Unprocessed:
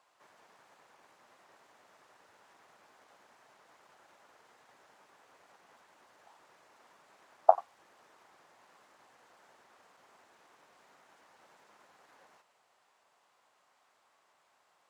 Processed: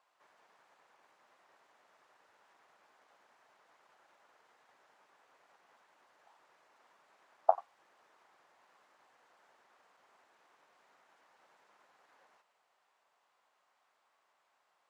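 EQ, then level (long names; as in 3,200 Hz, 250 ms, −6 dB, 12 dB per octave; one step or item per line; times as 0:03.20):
low-shelf EQ 330 Hz −9 dB
high-shelf EQ 5,200 Hz −7.5 dB
−3.5 dB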